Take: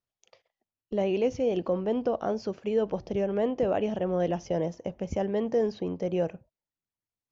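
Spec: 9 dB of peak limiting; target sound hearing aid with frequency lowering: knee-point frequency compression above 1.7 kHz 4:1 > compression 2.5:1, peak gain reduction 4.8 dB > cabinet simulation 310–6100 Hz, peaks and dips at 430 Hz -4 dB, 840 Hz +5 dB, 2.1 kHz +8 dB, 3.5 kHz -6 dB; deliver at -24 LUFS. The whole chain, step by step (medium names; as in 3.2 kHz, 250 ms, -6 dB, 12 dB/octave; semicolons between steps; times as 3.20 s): peak limiter -25.5 dBFS; knee-point frequency compression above 1.7 kHz 4:1; compression 2.5:1, threshold -35 dBFS; cabinet simulation 310–6100 Hz, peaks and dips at 430 Hz -4 dB, 840 Hz +5 dB, 2.1 kHz +8 dB, 3.5 kHz -6 dB; trim +16.5 dB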